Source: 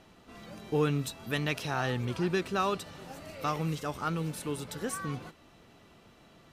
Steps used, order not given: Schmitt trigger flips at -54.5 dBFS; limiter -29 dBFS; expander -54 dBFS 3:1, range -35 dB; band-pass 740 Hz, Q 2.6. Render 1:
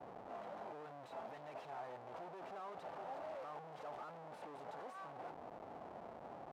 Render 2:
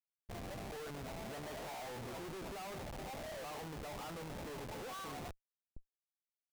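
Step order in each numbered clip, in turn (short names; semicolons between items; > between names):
limiter > Schmitt trigger > band-pass > expander; band-pass > limiter > Schmitt trigger > expander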